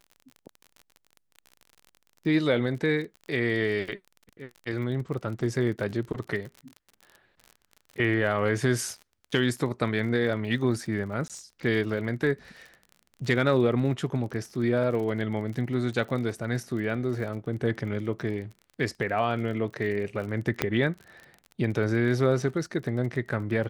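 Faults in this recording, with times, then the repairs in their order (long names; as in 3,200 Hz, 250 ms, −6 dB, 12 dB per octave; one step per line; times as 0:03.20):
surface crackle 38 per second −36 dBFS
0:11.28–0:11.30: drop-out 17 ms
0:20.62: click −9 dBFS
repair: click removal
repair the gap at 0:11.28, 17 ms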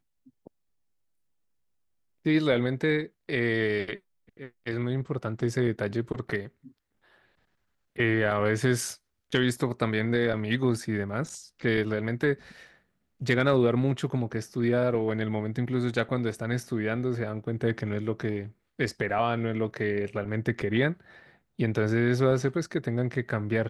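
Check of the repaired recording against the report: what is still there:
0:20.62: click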